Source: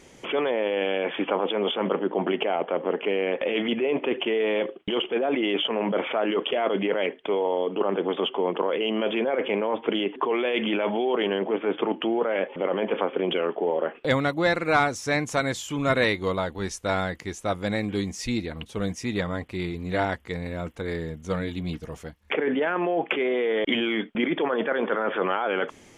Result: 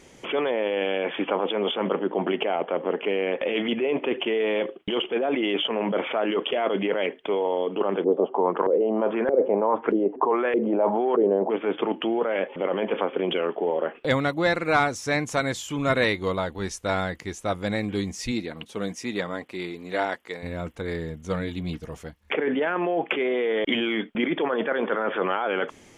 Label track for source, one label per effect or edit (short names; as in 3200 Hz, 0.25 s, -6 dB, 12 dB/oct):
8.040000	11.500000	LFO low-pass saw up 1.6 Hz 400–1800 Hz
18.310000	20.420000	HPF 150 Hz -> 370 Hz